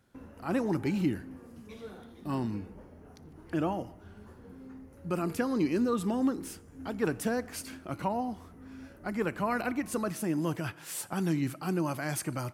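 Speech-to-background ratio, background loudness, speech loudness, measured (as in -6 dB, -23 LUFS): 18.0 dB, -50.5 LUFS, -32.5 LUFS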